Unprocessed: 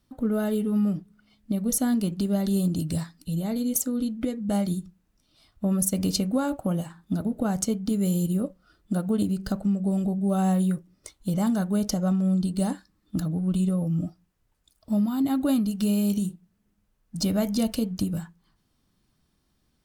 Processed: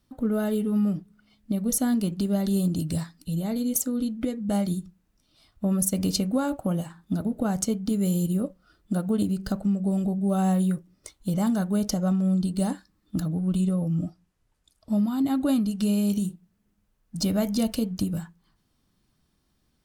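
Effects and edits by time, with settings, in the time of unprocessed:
13.61–16.11 s: low-pass 12 kHz

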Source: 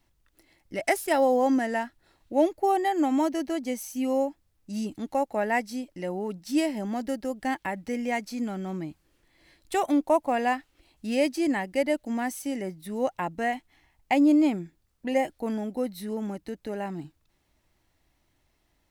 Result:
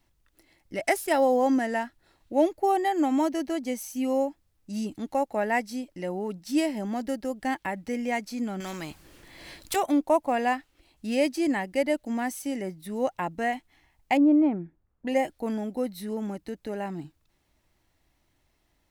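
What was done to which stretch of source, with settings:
8.60–9.76 s: spectrum-flattening compressor 2:1
14.17–15.07 s: low-pass 1.3 kHz

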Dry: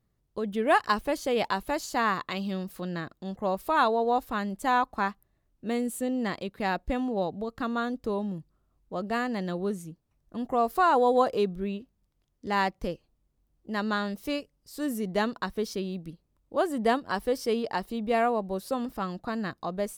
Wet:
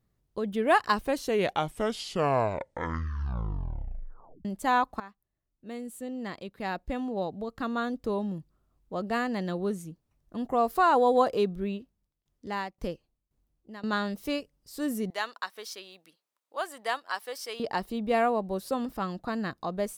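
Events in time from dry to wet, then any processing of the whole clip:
0.93 s: tape stop 3.52 s
5.00–8.11 s: fade in, from -19 dB
11.73–13.93 s: tremolo saw down 1.9 Hz, depth 90%
15.10–17.60 s: high-pass 950 Hz

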